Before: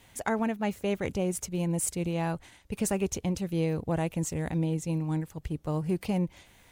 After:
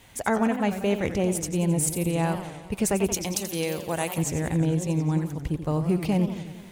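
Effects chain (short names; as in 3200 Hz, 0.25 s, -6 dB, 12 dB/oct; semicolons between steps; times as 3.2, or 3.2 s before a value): 3.14–4.18 RIAA curve recording; warbling echo 89 ms, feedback 66%, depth 207 cents, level -10.5 dB; gain +4.5 dB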